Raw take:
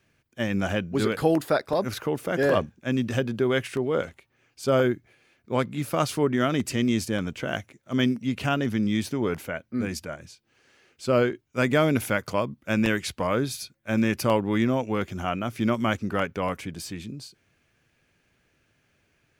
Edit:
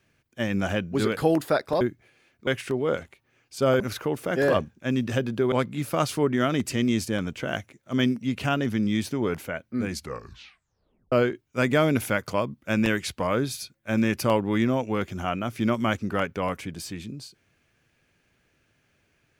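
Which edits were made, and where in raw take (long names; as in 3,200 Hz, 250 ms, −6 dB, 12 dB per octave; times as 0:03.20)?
0:01.81–0:03.53: swap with 0:04.86–0:05.52
0:09.90: tape stop 1.22 s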